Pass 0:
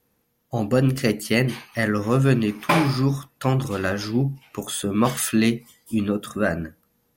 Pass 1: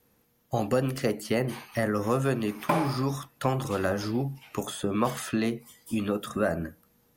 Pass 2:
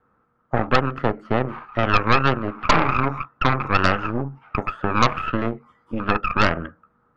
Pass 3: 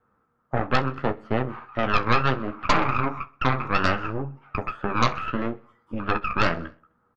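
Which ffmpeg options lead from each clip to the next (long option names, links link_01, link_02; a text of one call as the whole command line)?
ffmpeg -i in.wav -filter_complex "[0:a]acrossover=split=510|1100|7100[link_01][link_02][link_03][link_04];[link_01]acompressor=threshold=-31dB:ratio=4[link_05];[link_02]acompressor=threshold=-27dB:ratio=4[link_06];[link_03]acompressor=threshold=-42dB:ratio=4[link_07];[link_04]acompressor=threshold=-49dB:ratio=4[link_08];[link_05][link_06][link_07][link_08]amix=inputs=4:normalize=0,volume=2dB" out.wav
ffmpeg -i in.wav -af "lowpass=frequency=1300:width_type=q:width=8.1,aeval=exprs='0.562*(cos(1*acos(clip(val(0)/0.562,-1,1)))-cos(1*PI/2))+0.178*(cos(6*acos(clip(val(0)/0.562,-1,1)))-cos(6*PI/2))':channel_layout=same" out.wav
ffmpeg -i in.wav -af "flanger=delay=8.2:depth=9.2:regen=-38:speed=0.69:shape=triangular,aecho=1:1:64|128|192|256:0.0668|0.0361|0.0195|0.0105" out.wav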